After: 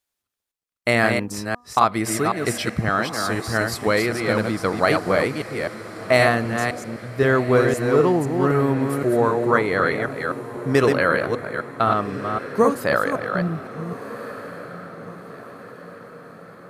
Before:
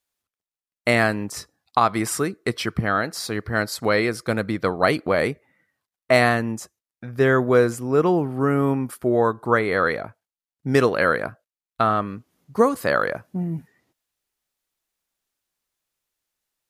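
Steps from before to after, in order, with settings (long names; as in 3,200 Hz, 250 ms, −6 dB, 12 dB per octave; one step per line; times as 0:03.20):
delay that plays each chunk backwards 258 ms, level −4.5 dB
hum removal 243 Hz, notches 5
on a send: feedback delay with all-pass diffusion 1,421 ms, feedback 53%, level −14 dB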